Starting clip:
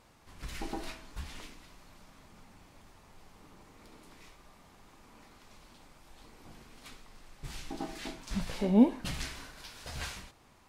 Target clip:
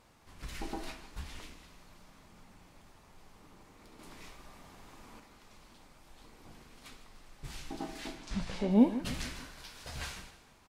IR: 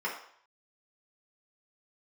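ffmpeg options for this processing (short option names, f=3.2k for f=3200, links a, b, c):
-filter_complex "[0:a]asettb=1/sr,asplit=3[a][b][c];[a]atrim=end=3.994[d];[b]atrim=start=3.99:end=5.2,asetpts=PTS-STARTPTS,afade=t=in:d=0.004:c=qsin,afade=t=out:st=1.206:d=0.004:c=qsin,acontrast=33[e];[c]atrim=start=5.196[f];[d][e]acrossfade=d=0.004:c1=hsin:c2=qsin[g];[g][f]acrossfade=d=0.004:c1=qsin:c2=hsin,asettb=1/sr,asplit=3[h][i][j];[h]atrim=end=8.184[k];[i]atrim=start=8.18:end=8.71,asetpts=PTS-STARTPTS,afade=t=in:d=0.004:c=qsin,afade=t=out:st=0.526:d=0.004:c=qsin,lowpass=7.4k[l];[j]atrim=start=8.706[m];[k][l]acrossfade=d=0.004:c1=hsin:c2=qsin[n];[n][m]acrossfade=d=0.004:c1=qsin:c2=hsin,asplit=2[o][p];[p]aecho=0:1:152|304|456|608:0.188|0.0866|0.0399|0.0183[q];[o][q]amix=inputs=2:normalize=0,volume=-1.5dB"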